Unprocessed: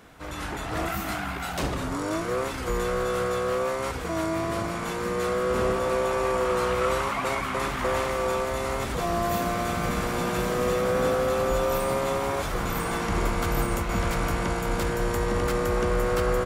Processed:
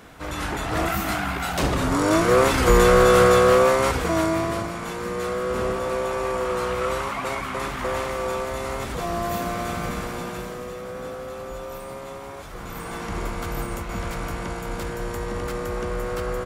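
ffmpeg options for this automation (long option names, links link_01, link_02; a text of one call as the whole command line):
ffmpeg -i in.wav -af "volume=18.5dB,afade=type=in:start_time=1.59:duration=1.01:silence=0.446684,afade=type=out:start_time=3.27:duration=1.44:silence=0.237137,afade=type=out:start_time=9.75:duration=0.93:silence=0.334965,afade=type=in:start_time=12.47:duration=0.59:silence=0.473151" out.wav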